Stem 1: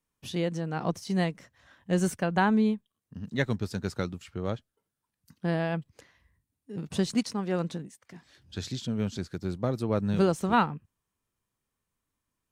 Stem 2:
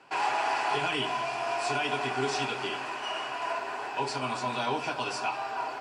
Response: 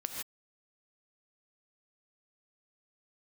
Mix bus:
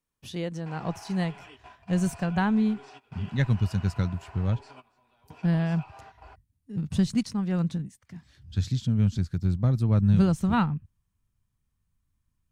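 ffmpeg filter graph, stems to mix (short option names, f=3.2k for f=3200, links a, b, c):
-filter_complex "[0:a]asubboost=boost=8.5:cutoff=140,volume=-2.5dB,asplit=2[a][b];[1:a]bass=f=250:g=0,treble=f=4k:g=-6,alimiter=level_in=4dB:limit=-24dB:level=0:latency=1:release=305,volume=-4dB,adelay=550,volume=-10.5dB[c];[b]apad=whole_len=280389[d];[c][d]sidechaingate=range=-19dB:threshold=-57dB:ratio=16:detection=peak[e];[a][e]amix=inputs=2:normalize=0"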